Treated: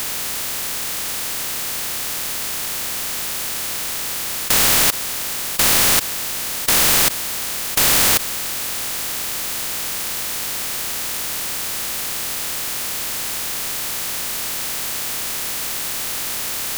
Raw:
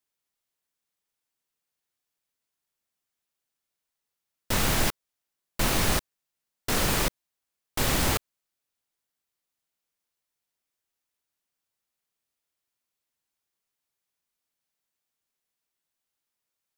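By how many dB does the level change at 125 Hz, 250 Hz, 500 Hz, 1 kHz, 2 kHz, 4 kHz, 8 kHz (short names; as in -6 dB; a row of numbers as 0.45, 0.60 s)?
0.0, +3.0, +5.5, +8.5, +11.5, +14.0, +17.0 dB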